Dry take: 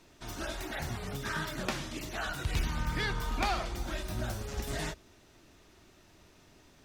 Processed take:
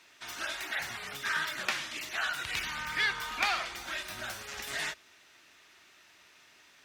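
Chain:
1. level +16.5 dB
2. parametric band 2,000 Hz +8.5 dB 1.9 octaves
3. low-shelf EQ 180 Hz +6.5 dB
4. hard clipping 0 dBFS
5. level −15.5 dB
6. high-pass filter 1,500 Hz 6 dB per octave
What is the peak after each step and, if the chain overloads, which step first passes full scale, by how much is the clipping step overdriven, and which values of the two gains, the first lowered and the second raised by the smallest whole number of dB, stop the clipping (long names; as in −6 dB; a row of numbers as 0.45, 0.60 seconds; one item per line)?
−2.5, +4.0, +4.0, 0.0, −15.5, −14.5 dBFS
step 2, 4.0 dB
step 1 +12.5 dB, step 5 −11.5 dB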